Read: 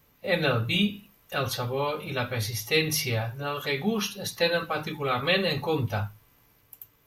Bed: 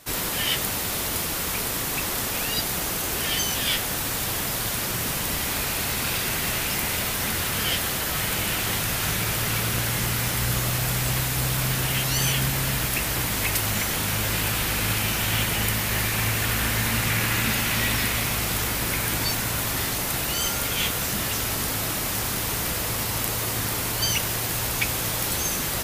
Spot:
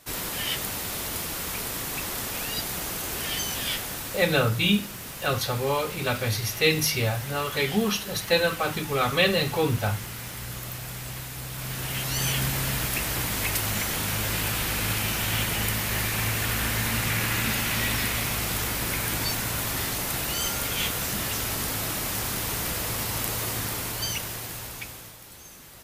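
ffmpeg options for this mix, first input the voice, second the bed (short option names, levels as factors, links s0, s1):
-filter_complex "[0:a]adelay=3900,volume=1.33[s0];[1:a]volume=1.68,afade=t=out:st=3.63:d=0.87:silence=0.446684,afade=t=in:st=11.5:d=0.89:silence=0.354813,afade=t=out:st=23.45:d=1.73:silence=0.125893[s1];[s0][s1]amix=inputs=2:normalize=0"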